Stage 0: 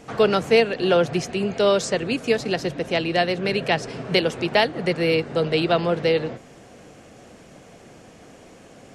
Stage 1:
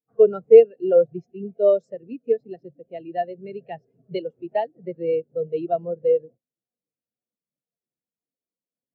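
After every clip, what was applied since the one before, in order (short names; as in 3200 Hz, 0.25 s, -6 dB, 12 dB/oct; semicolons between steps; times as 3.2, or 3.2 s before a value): spectral expander 2.5:1; gain +4 dB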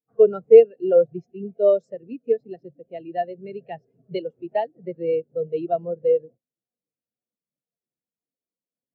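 nothing audible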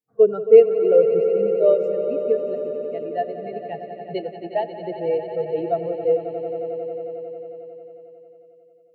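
swelling echo 90 ms, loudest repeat 5, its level -13 dB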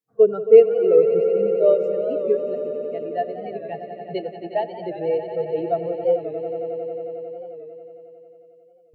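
record warp 45 rpm, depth 100 cents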